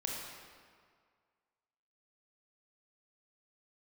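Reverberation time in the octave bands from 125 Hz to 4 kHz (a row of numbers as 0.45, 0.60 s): 1.8, 1.8, 1.9, 2.0, 1.7, 1.4 s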